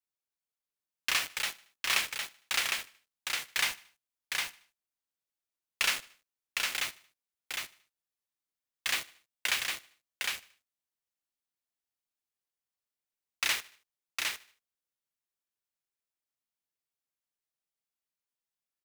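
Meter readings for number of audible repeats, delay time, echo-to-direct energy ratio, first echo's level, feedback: 5, 76 ms, -3.5 dB, -21.5 dB, no regular repeats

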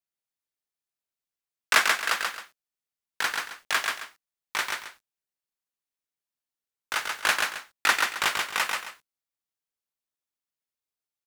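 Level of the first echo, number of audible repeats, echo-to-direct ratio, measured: -3.5 dB, 2, -3.0 dB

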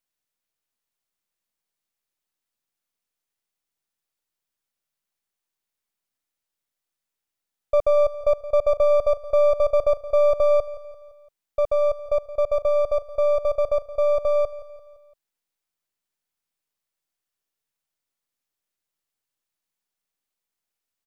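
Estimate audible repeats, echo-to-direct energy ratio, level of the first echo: 4, -15.0 dB, -16.0 dB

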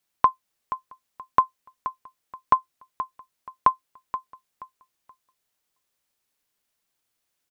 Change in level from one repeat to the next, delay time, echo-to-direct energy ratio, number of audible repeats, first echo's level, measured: -11.5 dB, 477 ms, -11.5 dB, 2, -12.0 dB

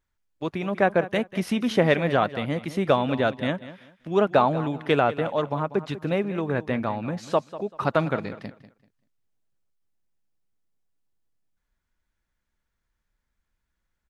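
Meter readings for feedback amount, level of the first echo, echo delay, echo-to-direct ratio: 24%, -15.0 dB, 193 ms, -14.5 dB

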